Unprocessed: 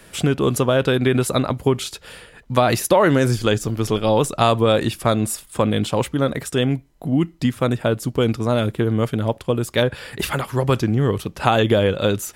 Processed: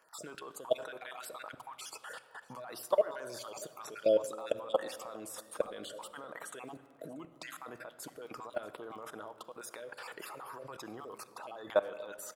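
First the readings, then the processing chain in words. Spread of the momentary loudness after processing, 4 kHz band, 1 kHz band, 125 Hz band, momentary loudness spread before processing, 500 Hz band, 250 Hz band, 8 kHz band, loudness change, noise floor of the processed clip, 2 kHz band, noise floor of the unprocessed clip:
16 LU, -22.0 dB, -20.0 dB, -39.5 dB, 7 LU, -16.0 dB, -29.0 dB, -17.0 dB, -19.0 dB, -61 dBFS, -19.5 dB, -50 dBFS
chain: random holes in the spectrogram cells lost 34%; high-pass 760 Hz 12 dB/octave; resonant high shelf 1.6 kHz -9 dB, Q 1.5; in parallel at +2 dB: compression 5:1, threshold -37 dBFS, peak gain reduction 20 dB; on the sum: peak limiter -16 dBFS, peak gain reduction 11.5 dB; level held to a coarse grid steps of 23 dB; crackle 16 per s -52 dBFS; on a send: delay 635 ms -22 dB; on the sum: simulated room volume 3100 m³, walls mixed, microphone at 0.58 m

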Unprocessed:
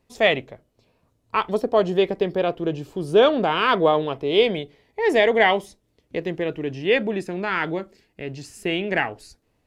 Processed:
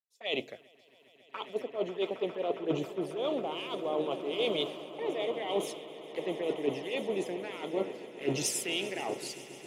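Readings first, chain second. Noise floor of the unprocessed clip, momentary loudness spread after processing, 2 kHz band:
-69 dBFS, 8 LU, -16.5 dB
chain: recorder AGC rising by 15 dB/s; high-pass 350 Hz 12 dB/octave; treble shelf 8.7 kHz +4 dB; reverse; compression 16:1, threshold -30 dBFS, peak gain reduction 19 dB; reverse; touch-sensitive flanger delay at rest 2.4 ms, full sweep at -30.5 dBFS; on a send: echo with a slow build-up 136 ms, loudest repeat 8, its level -15.5 dB; on the sum: three bands expanded up and down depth 100%; trim +2 dB

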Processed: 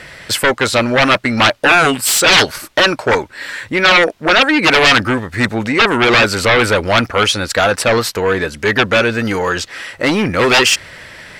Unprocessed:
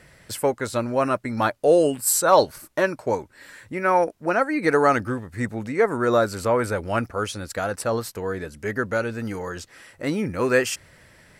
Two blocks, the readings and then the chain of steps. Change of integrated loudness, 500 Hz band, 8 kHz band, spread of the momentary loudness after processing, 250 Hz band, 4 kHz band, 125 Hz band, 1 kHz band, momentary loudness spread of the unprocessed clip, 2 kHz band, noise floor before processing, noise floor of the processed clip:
+10.5 dB, +6.0 dB, +9.0 dB, 8 LU, +9.0 dB, +22.5 dB, +9.0 dB, +8.5 dB, 12 LU, +16.0 dB, -54 dBFS, -38 dBFS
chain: sine folder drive 15 dB, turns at -4.5 dBFS; FFT filter 140 Hz 0 dB, 3.5 kHz +11 dB, 10 kHz 0 dB; trim -8.5 dB

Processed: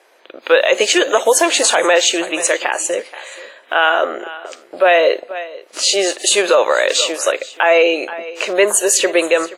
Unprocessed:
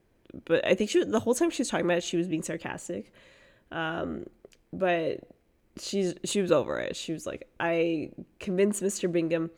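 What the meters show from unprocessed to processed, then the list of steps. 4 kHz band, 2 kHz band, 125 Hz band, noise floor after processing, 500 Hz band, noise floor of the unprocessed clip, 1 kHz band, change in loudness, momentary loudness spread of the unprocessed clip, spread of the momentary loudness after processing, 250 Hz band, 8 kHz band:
+20.5 dB, +18.5 dB, under -15 dB, -48 dBFS, +13.5 dB, -67 dBFS, +17.5 dB, +14.5 dB, 14 LU, 16 LU, +3.5 dB, +21.0 dB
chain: high-pass 540 Hz 24 dB/octave; delay 477 ms -20 dB; loudness maximiser +24.5 dB; trim -2 dB; WMA 32 kbps 32 kHz

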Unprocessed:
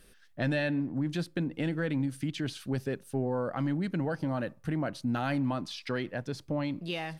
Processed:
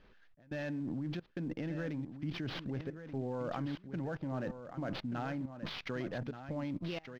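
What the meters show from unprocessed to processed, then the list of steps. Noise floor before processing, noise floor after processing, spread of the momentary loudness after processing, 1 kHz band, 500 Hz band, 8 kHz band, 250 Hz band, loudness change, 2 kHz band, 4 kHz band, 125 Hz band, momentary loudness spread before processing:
-59 dBFS, -62 dBFS, 3 LU, -7.0 dB, -7.0 dB, under -10 dB, -7.5 dB, -7.0 dB, -8.5 dB, -6.0 dB, -7.0 dB, 5 LU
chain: fade out at the end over 0.89 s; level held to a coarse grid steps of 24 dB; trance gate "xx.xxxx.xx" 88 bpm -24 dB; sample-rate reducer 8.1 kHz, jitter 20%; distance through air 240 m; delay 1180 ms -10 dB; trim +11 dB

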